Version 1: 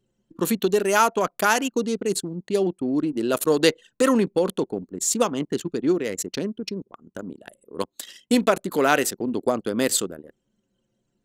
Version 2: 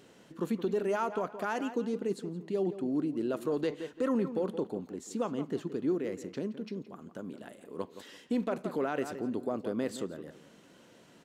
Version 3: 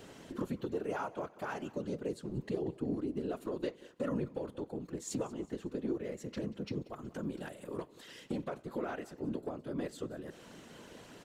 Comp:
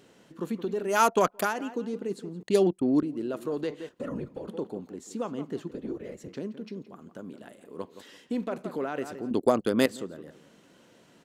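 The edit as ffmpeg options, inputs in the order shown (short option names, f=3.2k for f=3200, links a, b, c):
-filter_complex "[0:a]asplit=3[a][b][c];[2:a]asplit=2[d][e];[1:a]asplit=6[f][g][h][i][j][k];[f]atrim=end=1.11[l];[a]atrim=start=0.87:end=1.54[m];[g]atrim=start=1.3:end=2.432[n];[b]atrim=start=2.428:end=3.032[o];[h]atrim=start=3.028:end=3.892[p];[d]atrim=start=3.888:end=4.482[q];[i]atrim=start=4.478:end=5.712[r];[e]atrim=start=5.708:end=6.282[s];[j]atrim=start=6.278:end=9.312[t];[c]atrim=start=9.308:end=9.862[u];[k]atrim=start=9.858[v];[l][m]acrossfade=d=0.24:c1=tri:c2=tri[w];[w][n]acrossfade=d=0.24:c1=tri:c2=tri[x];[x][o]acrossfade=d=0.004:c1=hsin:c2=hsin[y];[y][p]acrossfade=d=0.004:c1=hsin:c2=hsin[z];[z][q]acrossfade=d=0.004:c1=hsin:c2=hsin[aa];[aa][r]acrossfade=d=0.004:c1=hsin:c2=hsin[ab];[ab][s]acrossfade=d=0.004:c1=hsin:c2=hsin[ac];[ac][t]acrossfade=d=0.004:c1=hsin:c2=hsin[ad];[ad][u]acrossfade=d=0.004:c1=hsin:c2=hsin[ae];[ae][v]acrossfade=d=0.004:c1=hsin:c2=hsin"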